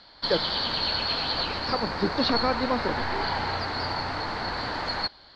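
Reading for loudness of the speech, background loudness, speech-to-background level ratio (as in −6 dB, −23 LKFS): −29.5 LKFS, −28.0 LKFS, −1.5 dB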